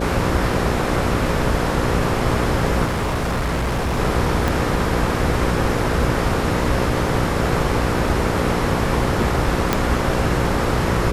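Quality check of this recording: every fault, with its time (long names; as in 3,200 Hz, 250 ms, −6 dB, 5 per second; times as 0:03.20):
mains buzz 60 Hz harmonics 9 −24 dBFS
0:02.85–0:03.99: clipping −17.5 dBFS
0:04.48: click
0:09.73: click −2 dBFS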